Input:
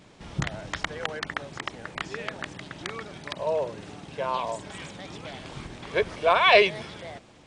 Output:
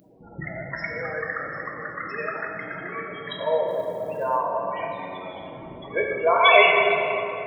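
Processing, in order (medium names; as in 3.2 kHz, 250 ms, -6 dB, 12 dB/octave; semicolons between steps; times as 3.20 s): 4.94–5.37 s: robot voice 92.7 Hz; de-hum 145.3 Hz, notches 30; 2.17–2.80 s: peaking EQ 1.1 kHz +4.5 dB 1.9 oct; in parallel at -1.5 dB: compression, threshold -34 dBFS, peak gain reduction 19.5 dB; on the sum: loudest bins only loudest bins 16; 3.67–4.37 s: crackle 450 per s -59 dBFS; RIAA curve recording; simulated room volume 180 m³, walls hard, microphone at 0.59 m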